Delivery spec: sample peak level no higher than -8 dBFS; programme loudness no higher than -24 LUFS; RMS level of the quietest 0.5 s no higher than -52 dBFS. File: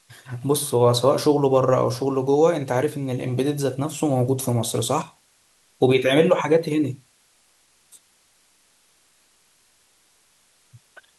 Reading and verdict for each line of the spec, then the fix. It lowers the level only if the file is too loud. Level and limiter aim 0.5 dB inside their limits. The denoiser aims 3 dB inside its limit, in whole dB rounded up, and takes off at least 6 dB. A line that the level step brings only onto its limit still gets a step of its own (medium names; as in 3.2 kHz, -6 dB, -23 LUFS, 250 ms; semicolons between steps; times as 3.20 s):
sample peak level -4.5 dBFS: fail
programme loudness -21.0 LUFS: fail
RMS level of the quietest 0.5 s -61 dBFS: pass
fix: trim -3.5 dB; peak limiter -8.5 dBFS